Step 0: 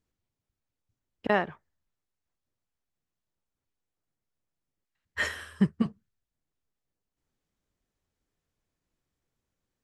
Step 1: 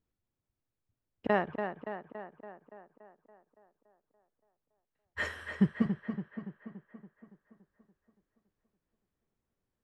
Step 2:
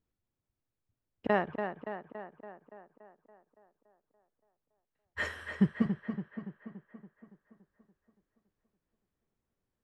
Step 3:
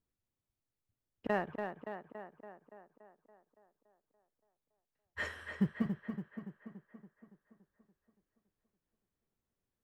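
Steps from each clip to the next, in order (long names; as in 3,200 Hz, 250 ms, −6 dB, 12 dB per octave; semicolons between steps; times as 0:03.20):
high-shelf EQ 2,800 Hz −10.5 dB; on a send: tape delay 284 ms, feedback 66%, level −6 dB, low-pass 3,000 Hz; on the sum: level −2 dB
no processing that can be heard
in parallel at −9 dB: gain into a clipping stage and back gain 29 dB; on the sum: floating-point word with a short mantissa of 6 bits; level −6.5 dB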